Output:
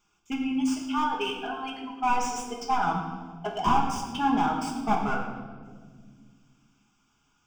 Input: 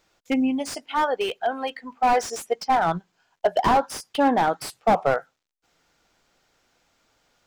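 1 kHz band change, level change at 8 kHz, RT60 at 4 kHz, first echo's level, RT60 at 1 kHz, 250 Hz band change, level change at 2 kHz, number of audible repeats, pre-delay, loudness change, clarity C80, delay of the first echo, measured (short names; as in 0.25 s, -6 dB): -4.0 dB, -3.0 dB, 1.3 s, none, 1.4 s, -2.0 dB, -4.0 dB, none, 5 ms, -4.5 dB, 6.0 dB, none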